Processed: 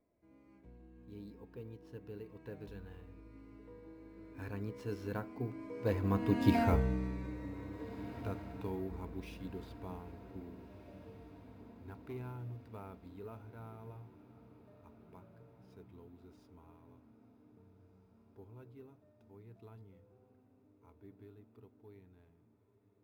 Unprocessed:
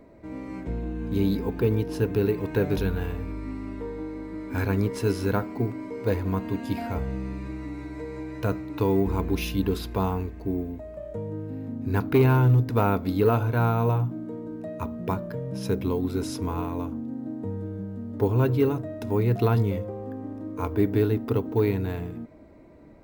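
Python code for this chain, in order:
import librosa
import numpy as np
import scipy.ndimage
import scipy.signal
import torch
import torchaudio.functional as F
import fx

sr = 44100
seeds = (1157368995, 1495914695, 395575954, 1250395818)

y = scipy.ndimage.median_filter(x, 5, mode='constant')
y = fx.doppler_pass(y, sr, speed_mps=12, closest_m=2.7, pass_at_s=6.57)
y = fx.echo_diffused(y, sr, ms=1703, feedback_pct=55, wet_db=-16)
y = y * librosa.db_to_amplitude(2.0)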